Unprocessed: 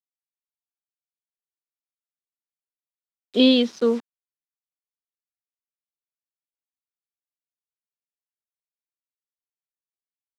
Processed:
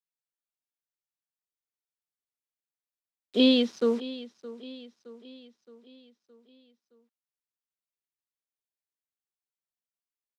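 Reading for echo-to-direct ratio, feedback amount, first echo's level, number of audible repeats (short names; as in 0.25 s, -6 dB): -15.5 dB, 52%, -17.0 dB, 4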